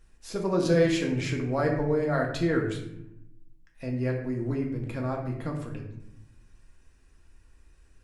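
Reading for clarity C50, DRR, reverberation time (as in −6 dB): 5.5 dB, −0.5 dB, 0.80 s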